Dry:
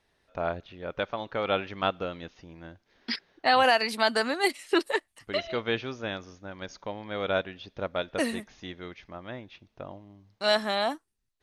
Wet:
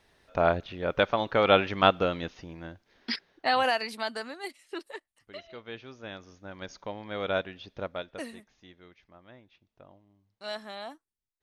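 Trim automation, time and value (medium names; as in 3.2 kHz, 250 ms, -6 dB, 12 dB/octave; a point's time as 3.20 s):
2.20 s +6.5 dB
3.76 s -5 dB
4.51 s -14 dB
5.63 s -14 dB
6.54 s -1.5 dB
7.79 s -1.5 dB
8.32 s -13 dB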